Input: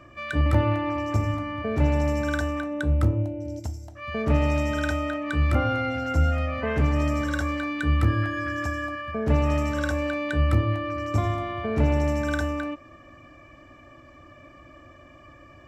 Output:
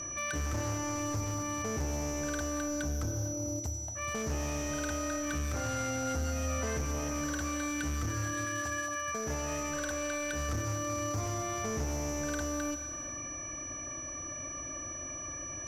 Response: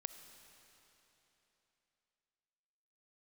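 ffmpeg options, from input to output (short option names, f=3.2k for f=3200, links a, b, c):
-filter_complex "[0:a]asettb=1/sr,asplit=3[a][b][c];[a]atrim=end=8.454[d];[b]atrim=start=8.45:end=10.49,asetpts=PTS-STARTPTS,afade=t=in:d=0.004:c=qsin,afade=t=out:st=2.036:d=0.004:c=qsin,lowshelf=f=380:g=-9[e];[c]atrim=start=10.486[f];[d][e]acrossfade=d=0.004:c1=hsin:c2=qsin[g];[g][f]acrossfade=d=0.004:c1=qsin:c2=hsin,acompressor=threshold=-42dB:ratio=2,aeval=exprs='val(0)+0.00891*sin(2*PI*5900*n/s)':c=same,asoftclip=type=hard:threshold=-33.5dB[h];[1:a]atrim=start_sample=2205,afade=t=out:st=0.37:d=0.01,atrim=end_sample=16758,asetrate=28224,aresample=44100[i];[h][i]afir=irnorm=-1:irlink=0,volume=4.5dB"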